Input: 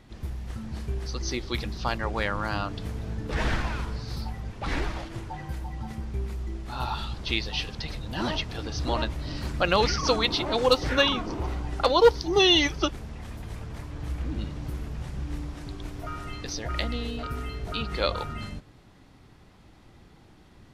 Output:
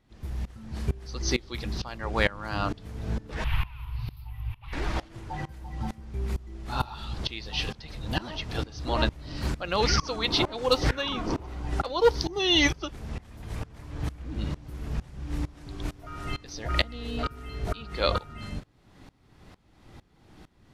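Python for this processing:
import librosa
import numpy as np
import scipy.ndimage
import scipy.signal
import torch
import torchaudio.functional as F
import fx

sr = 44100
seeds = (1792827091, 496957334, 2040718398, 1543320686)

y = fx.curve_eq(x, sr, hz=(130.0, 180.0, 540.0, 970.0, 1600.0, 2700.0, 5400.0, 8000.0, 12000.0), db=(0, -23, -26, -3, -13, 2, -19, -24, 8), at=(3.44, 4.73))
y = fx.tremolo_decay(y, sr, direction='swelling', hz=2.2, depth_db=22)
y = y * librosa.db_to_amplitude(7.0)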